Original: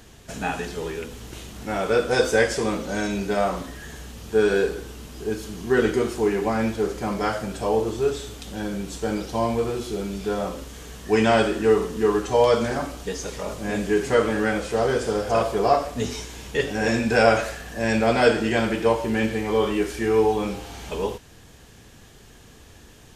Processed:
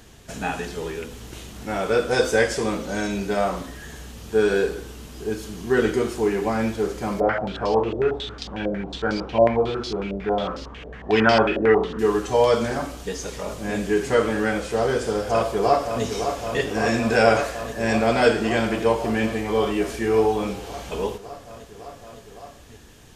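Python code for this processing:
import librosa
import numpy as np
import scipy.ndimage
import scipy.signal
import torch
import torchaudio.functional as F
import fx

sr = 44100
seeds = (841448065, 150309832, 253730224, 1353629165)

y = fx.filter_held_lowpass(x, sr, hz=11.0, low_hz=590.0, high_hz=4800.0, at=(7.2, 11.99))
y = fx.echo_throw(y, sr, start_s=15.06, length_s=0.98, ms=560, feedback_pct=85, wet_db=-7.5)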